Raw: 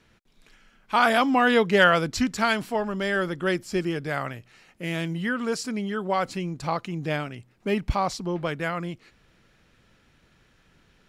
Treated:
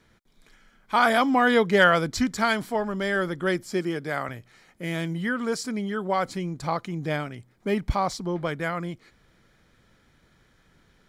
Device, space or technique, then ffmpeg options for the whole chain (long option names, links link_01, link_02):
exciter from parts: -filter_complex "[0:a]asettb=1/sr,asplit=3[link_01][link_02][link_03];[link_01]atrim=end=3.714[link_04];[link_02]atrim=start=3.71:end=4.29,asetpts=PTS-STARTPTS,afade=type=in:duration=0.004:curve=qsin,afade=type=out:start_time=0.576:duration=0.004:curve=qsin,highpass=160[link_05];[link_03]atrim=start=4.286[link_06];[link_04][link_05]acrossfade=duration=0.004:curve1=hsin:curve2=qsin[link_07];[link_07][link_06]acrossfade=duration=0.004:curve1=qsin:curve2=hsin,asplit=2[link_08][link_09];[link_09]highpass=4000,asoftclip=type=tanh:threshold=-39dB,highpass=4400,volume=-13dB[link_10];[link_08][link_10]amix=inputs=2:normalize=0,bandreject=frequency=2700:width=5.5"